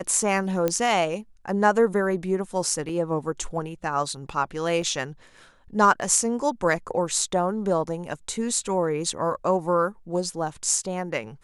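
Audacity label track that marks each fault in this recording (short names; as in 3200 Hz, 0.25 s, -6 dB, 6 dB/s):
0.680000	0.680000	pop -10 dBFS
2.890000	2.890000	gap 4.6 ms
4.820000	4.820000	gap 2.6 ms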